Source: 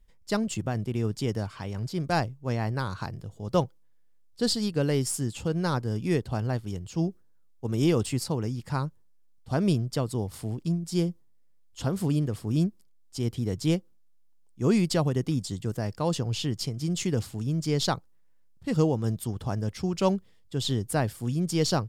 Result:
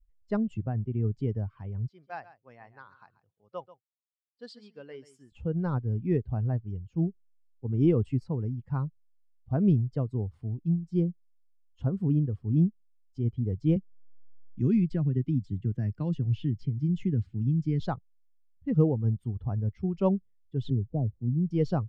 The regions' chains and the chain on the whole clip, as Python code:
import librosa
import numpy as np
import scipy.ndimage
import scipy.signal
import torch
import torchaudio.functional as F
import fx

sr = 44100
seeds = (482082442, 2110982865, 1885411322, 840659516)

y = fx.chain(x, sr, fx.highpass(hz=1400.0, slope=6),
    fx.echo_single(ms=136, db=-10.5), at=(1.89, 5.32))
y = fx.chain(y, sr, fx.median_filter(points=3),
    fx.band_shelf(hz=740.0, db=-8.0, octaves=1.7),
    fx.band_squash(depth_pct=70), at=(13.76, 17.8))
y = fx.chain(y, sr, fx.bessel_lowpass(hz=530.0, order=6),
    fx.band_squash(depth_pct=40), at=(20.7, 21.51))
y = fx.bin_expand(y, sr, power=1.5)
y = scipy.signal.sosfilt(scipy.signal.butter(2, 2400.0, 'lowpass', fs=sr, output='sos'), y)
y = fx.tilt_shelf(y, sr, db=6.5, hz=670.0)
y = F.gain(torch.from_numpy(y), -2.0).numpy()